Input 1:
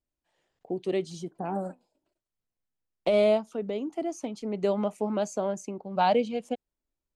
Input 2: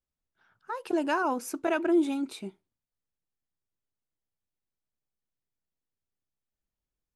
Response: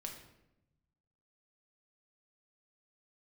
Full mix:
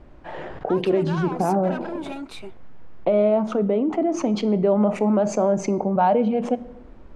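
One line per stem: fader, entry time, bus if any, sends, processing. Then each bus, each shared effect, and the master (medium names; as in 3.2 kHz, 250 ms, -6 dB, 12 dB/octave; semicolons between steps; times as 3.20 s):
+1.0 dB, 0.00 s, send -5.5 dB, low-pass 1.4 kHz 12 dB/octave; level flattener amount 70%
-1.0 dB, 0.00 s, no send, overdrive pedal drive 20 dB, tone 1.4 kHz, clips at -15 dBFS; high-pass 480 Hz 6 dB/octave; peak limiter -26 dBFS, peak gain reduction 8 dB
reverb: on, RT60 0.90 s, pre-delay 5 ms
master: none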